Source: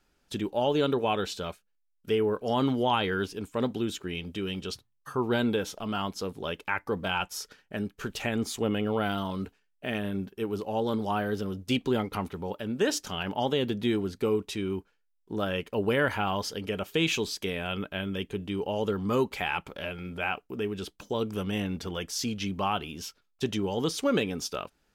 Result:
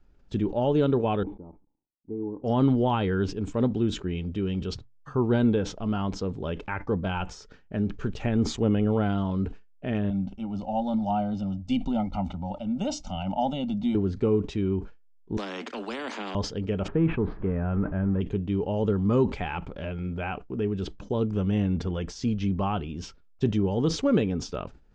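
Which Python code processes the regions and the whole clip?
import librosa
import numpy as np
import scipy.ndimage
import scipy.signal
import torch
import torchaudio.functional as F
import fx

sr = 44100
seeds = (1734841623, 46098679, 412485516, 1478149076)

y = fx.chain(x, sr, fx.law_mismatch(coded='A'),
    fx.formant_cascade(vowel='u'),
    fx.peak_eq(hz=1100.0, db=8.5, octaves=0.95), at=(1.23, 2.44))
y = fx.chain(y, sr, fx.peak_eq(hz=2300.0, db=3.0, octaves=1.0),
    fx.fixed_phaser(hz=450.0, stages=6),
    fx.comb(ms=1.4, depth=0.82), at=(10.1, 13.95))
y = fx.chain(y, sr, fx.steep_highpass(hz=220.0, slope=96),
    fx.spectral_comp(ratio=4.0), at=(15.37, 16.35))
y = fx.chain(y, sr, fx.zero_step(step_db=-35.5),
    fx.lowpass(hz=1600.0, slope=24),
    fx.peak_eq(hz=530.0, db=-3.0, octaves=1.0), at=(16.88, 18.21))
y = scipy.signal.sosfilt(scipy.signal.butter(8, 7700.0, 'lowpass', fs=sr, output='sos'), y)
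y = fx.tilt_eq(y, sr, slope=-3.5)
y = fx.sustainer(y, sr, db_per_s=130.0)
y = F.gain(torch.from_numpy(y), -2.0).numpy()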